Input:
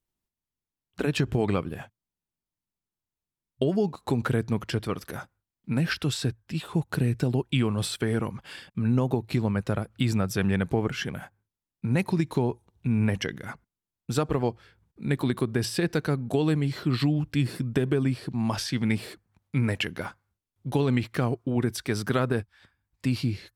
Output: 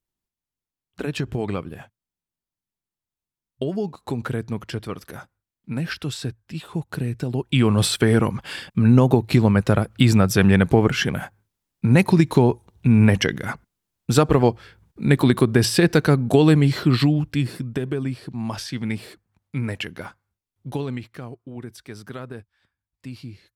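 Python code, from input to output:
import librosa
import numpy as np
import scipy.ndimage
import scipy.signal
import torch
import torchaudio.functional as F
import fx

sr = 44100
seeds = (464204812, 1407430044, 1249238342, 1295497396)

y = fx.gain(x, sr, db=fx.line((7.28, -1.0), (7.72, 9.5), (16.75, 9.5), (17.76, -1.0), (20.69, -1.0), (21.19, -10.0)))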